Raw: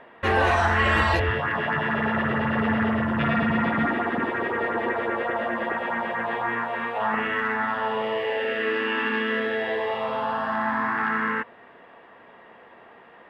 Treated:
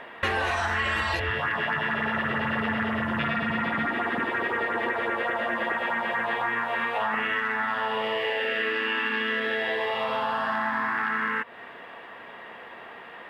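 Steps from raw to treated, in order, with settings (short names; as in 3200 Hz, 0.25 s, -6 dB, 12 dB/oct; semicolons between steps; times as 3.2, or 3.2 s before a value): tilt shelf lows -5 dB, about 1400 Hz; compressor, threshold -32 dBFS, peak gain reduction 14 dB; gain +7.5 dB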